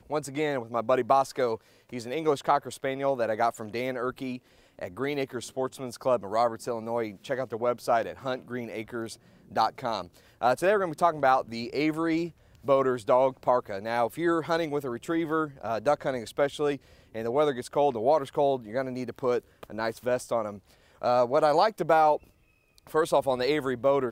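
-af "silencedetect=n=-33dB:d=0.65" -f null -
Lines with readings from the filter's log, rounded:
silence_start: 22.16
silence_end: 22.94 | silence_duration: 0.78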